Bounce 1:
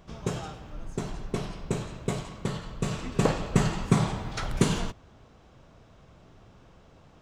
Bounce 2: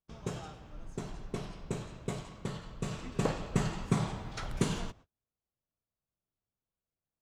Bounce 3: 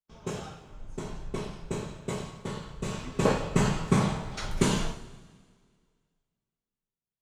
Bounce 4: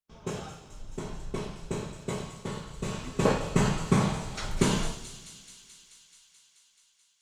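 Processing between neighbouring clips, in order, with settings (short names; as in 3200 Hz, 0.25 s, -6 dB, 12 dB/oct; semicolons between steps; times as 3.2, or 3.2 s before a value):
gate -45 dBFS, range -35 dB; gain -7 dB
two-slope reverb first 0.41 s, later 2.9 s, from -18 dB, DRR -1 dB; three-band expander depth 40%; gain +2 dB
thin delay 0.216 s, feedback 77%, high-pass 3900 Hz, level -9 dB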